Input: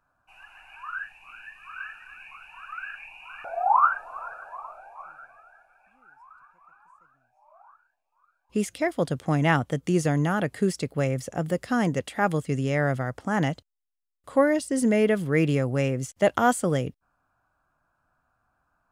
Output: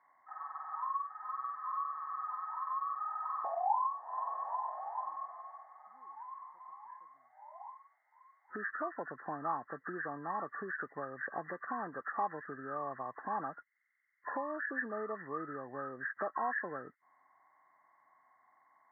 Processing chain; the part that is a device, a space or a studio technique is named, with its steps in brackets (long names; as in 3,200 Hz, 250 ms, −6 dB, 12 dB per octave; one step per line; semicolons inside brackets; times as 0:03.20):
hearing aid with frequency lowering (hearing-aid frequency compression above 1,000 Hz 4 to 1; downward compressor 4 to 1, threshold −38 dBFS, peak gain reduction 19 dB; loudspeaker in its box 390–5,100 Hz, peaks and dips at 520 Hz −5 dB, 850 Hz +7 dB, 1,400 Hz +4 dB, 2,000 Hz +8 dB, 2,900 Hz −5 dB)
level +1 dB